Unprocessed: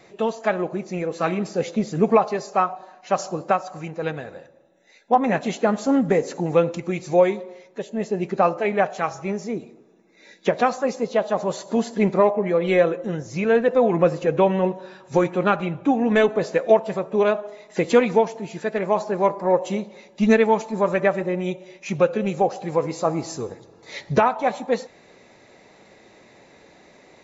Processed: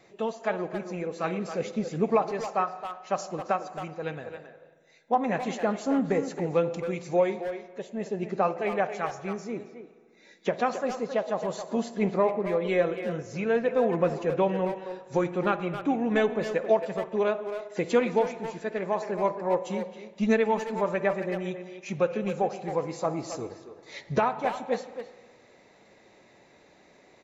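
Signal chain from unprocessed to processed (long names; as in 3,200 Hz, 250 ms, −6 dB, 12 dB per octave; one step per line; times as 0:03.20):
far-end echo of a speakerphone 270 ms, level −8 dB
spring reverb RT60 1.7 s, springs 51 ms, chirp 55 ms, DRR 15 dB
level −7 dB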